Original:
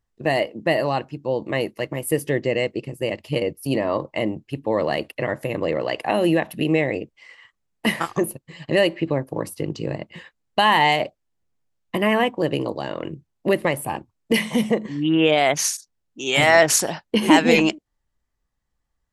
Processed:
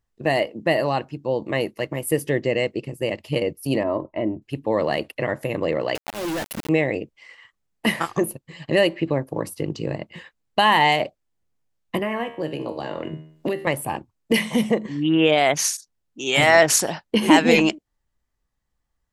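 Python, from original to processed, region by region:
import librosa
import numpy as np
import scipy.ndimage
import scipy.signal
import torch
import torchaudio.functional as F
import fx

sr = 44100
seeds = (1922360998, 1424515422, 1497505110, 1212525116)

y = fx.chain(x, sr, fx.spacing_loss(db_at_10k=44),
    fx.comb(ms=3.1, depth=0.47), at=(3.83, 4.42))
y = fx.chain(y, sr, fx.auto_swell(attack_ms=655.0),
    fx.quant_companded(bits=2), at=(5.95, 6.69))
y = fx.chain(y, sr, fx.high_shelf(hz=3600.0, db=-5.5),
    fx.comb_fb(f0_hz=78.0, decay_s=0.45, harmonics='all', damping=0.0, mix_pct=70),
    fx.band_squash(depth_pct=100), at=(11.99, 13.67))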